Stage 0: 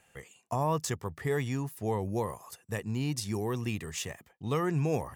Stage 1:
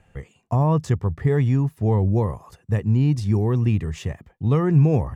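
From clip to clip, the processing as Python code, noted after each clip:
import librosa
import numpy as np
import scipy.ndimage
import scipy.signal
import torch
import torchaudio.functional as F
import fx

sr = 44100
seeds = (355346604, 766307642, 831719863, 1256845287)

y = fx.riaa(x, sr, side='playback')
y = y * librosa.db_to_amplitude(4.0)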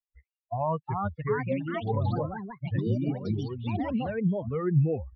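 y = fx.bin_expand(x, sr, power=3.0)
y = scipy.signal.sosfilt(scipy.signal.cheby1(6, 6, 2900.0, 'lowpass', fs=sr, output='sos'), y)
y = fx.echo_pitch(y, sr, ms=472, semitones=4, count=3, db_per_echo=-3.0)
y = y * librosa.db_to_amplitude(1.5)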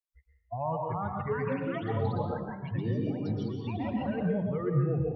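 y = fx.rev_plate(x, sr, seeds[0], rt60_s=0.85, hf_ratio=0.7, predelay_ms=105, drr_db=1.5)
y = y * librosa.db_to_amplitude(-4.5)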